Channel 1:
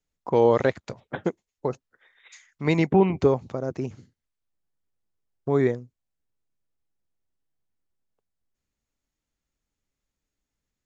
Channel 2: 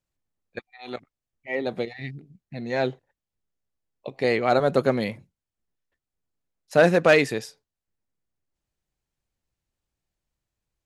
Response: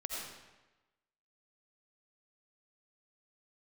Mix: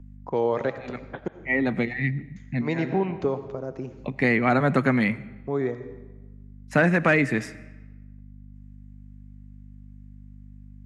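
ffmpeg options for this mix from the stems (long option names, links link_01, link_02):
-filter_complex "[0:a]volume=-6dB,asplit=3[link_01][link_02][link_03];[link_01]atrim=end=1.28,asetpts=PTS-STARTPTS,afade=type=out:start_time=1.276:duration=0.004:curve=hsin[link_04];[link_02]atrim=start=1.28:end=2.36,asetpts=PTS-STARTPTS,volume=0[link_05];[link_03]atrim=start=2.36,asetpts=PTS-STARTPTS,afade=type=in:duration=0.004:curve=hsin[link_06];[link_04][link_05][link_06]concat=n=3:v=0:a=1,asplit=3[link_07][link_08][link_09];[link_08]volume=-9dB[link_10];[1:a]equalizer=frequency=125:width_type=o:width=1:gain=12,equalizer=frequency=250:width_type=o:width=1:gain=9,equalizer=frequency=500:width_type=o:width=1:gain=-6,equalizer=frequency=1000:width_type=o:width=1:gain=3,equalizer=frequency=2000:width_type=o:width=1:gain=12,equalizer=frequency=4000:width_type=o:width=1:gain=-6,equalizer=frequency=8000:width_type=o:width=1:gain=7,aeval=exprs='val(0)+0.00891*(sin(2*PI*50*n/s)+sin(2*PI*2*50*n/s)/2+sin(2*PI*3*50*n/s)/3+sin(2*PI*4*50*n/s)/4+sin(2*PI*5*50*n/s)/5)':channel_layout=same,volume=0dB,asplit=2[link_11][link_12];[link_12]volume=-20dB[link_13];[link_09]apad=whole_len=478525[link_14];[link_11][link_14]sidechaincompress=threshold=-43dB:ratio=8:attack=7.6:release=180[link_15];[2:a]atrim=start_sample=2205[link_16];[link_10][link_13]amix=inputs=2:normalize=0[link_17];[link_17][link_16]afir=irnorm=-1:irlink=0[link_18];[link_07][link_15][link_18]amix=inputs=3:normalize=0,highshelf=frequency=5900:gain=-11.5,acrossover=split=130|770[link_19][link_20][link_21];[link_19]acompressor=threshold=-45dB:ratio=4[link_22];[link_20]acompressor=threshold=-20dB:ratio=4[link_23];[link_21]acompressor=threshold=-22dB:ratio=4[link_24];[link_22][link_23][link_24]amix=inputs=3:normalize=0"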